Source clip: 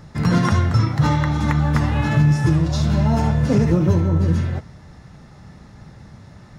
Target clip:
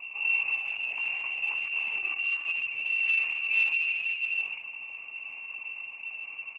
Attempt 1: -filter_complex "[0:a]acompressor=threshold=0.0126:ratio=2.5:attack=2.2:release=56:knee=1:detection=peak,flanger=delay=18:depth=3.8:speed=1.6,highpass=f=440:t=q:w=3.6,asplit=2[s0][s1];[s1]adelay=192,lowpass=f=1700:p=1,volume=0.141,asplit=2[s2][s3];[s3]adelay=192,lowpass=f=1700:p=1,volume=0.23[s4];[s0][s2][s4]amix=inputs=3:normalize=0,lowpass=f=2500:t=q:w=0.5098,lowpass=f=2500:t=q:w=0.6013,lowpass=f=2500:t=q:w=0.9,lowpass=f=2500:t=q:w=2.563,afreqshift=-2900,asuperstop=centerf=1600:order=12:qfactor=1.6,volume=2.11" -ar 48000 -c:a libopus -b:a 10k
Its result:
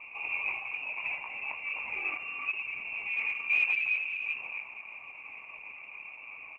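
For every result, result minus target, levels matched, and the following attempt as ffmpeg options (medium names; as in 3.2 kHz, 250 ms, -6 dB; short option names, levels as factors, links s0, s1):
250 Hz band +6.5 dB; compression: peak gain reduction -4 dB
-filter_complex "[0:a]acompressor=threshold=0.0126:ratio=2.5:attack=2.2:release=56:knee=1:detection=peak,flanger=delay=18:depth=3.8:speed=1.6,highpass=f=210:t=q:w=3.6,asplit=2[s0][s1];[s1]adelay=192,lowpass=f=1700:p=1,volume=0.141,asplit=2[s2][s3];[s3]adelay=192,lowpass=f=1700:p=1,volume=0.23[s4];[s0][s2][s4]amix=inputs=3:normalize=0,lowpass=f=2500:t=q:w=0.5098,lowpass=f=2500:t=q:w=0.6013,lowpass=f=2500:t=q:w=0.9,lowpass=f=2500:t=q:w=2.563,afreqshift=-2900,asuperstop=centerf=1600:order=12:qfactor=1.6,volume=2.11" -ar 48000 -c:a libopus -b:a 10k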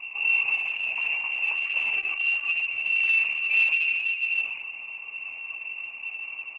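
compression: peak gain reduction -4 dB
-filter_complex "[0:a]acompressor=threshold=0.00596:ratio=2.5:attack=2.2:release=56:knee=1:detection=peak,flanger=delay=18:depth=3.8:speed=1.6,highpass=f=210:t=q:w=3.6,asplit=2[s0][s1];[s1]adelay=192,lowpass=f=1700:p=1,volume=0.141,asplit=2[s2][s3];[s3]adelay=192,lowpass=f=1700:p=1,volume=0.23[s4];[s0][s2][s4]amix=inputs=3:normalize=0,lowpass=f=2500:t=q:w=0.5098,lowpass=f=2500:t=q:w=0.6013,lowpass=f=2500:t=q:w=0.9,lowpass=f=2500:t=q:w=2.563,afreqshift=-2900,asuperstop=centerf=1600:order=12:qfactor=1.6,volume=2.11" -ar 48000 -c:a libopus -b:a 10k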